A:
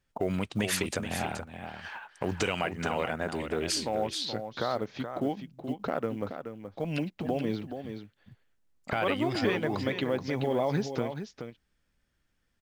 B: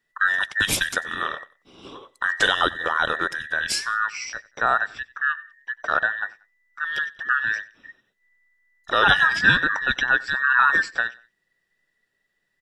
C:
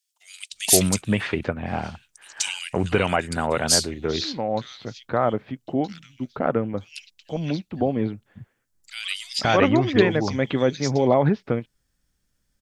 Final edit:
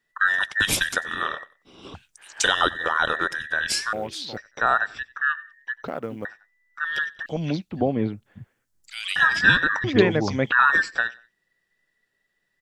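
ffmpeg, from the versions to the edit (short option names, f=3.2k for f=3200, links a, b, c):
-filter_complex "[2:a]asplit=3[a][b][c];[0:a]asplit=2[d][e];[1:a]asplit=6[f][g][h][i][j][k];[f]atrim=end=1.942[l];[a]atrim=start=1.938:end=2.442[m];[g]atrim=start=2.438:end=3.932[n];[d]atrim=start=3.928:end=4.372[o];[h]atrim=start=4.368:end=5.842[p];[e]atrim=start=5.838:end=6.252[q];[i]atrim=start=6.248:end=7.262[r];[b]atrim=start=7.258:end=9.162[s];[j]atrim=start=9.158:end=9.842[t];[c]atrim=start=9.838:end=10.522[u];[k]atrim=start=10.518[v];[l][m]acrossfade=d=0.004:c1=hsin:c2=hsin[w];[w][n]acrossfade=d=0.004:c1=hsin:c2=hsin[x];[x][o]acrossfade=d=0.004:c1=hsin:c2=hsin[y];[y][p]acrossfade=d=0.004:c1=hsin:c2=hsin[z];[z][q]acrossfade=d=0.004:c1=hsin:c2=hsin[aa];[aa][r]acrossfade=d=0.004:c1=hsin:c2=hsin[ab];[ab][s]acrossfade=d=0.004:c1=hsin:c2=hsin[ac];[ac][t]acrossfade=d=0.004:c1=hsin:c2=hsin[ad];[ad][u]acrossfade=d=0.004:c1=hsin:c2=hsin[ae];[ae][v]acrossfade=d=0.004:c1=hsin:c2=hsin"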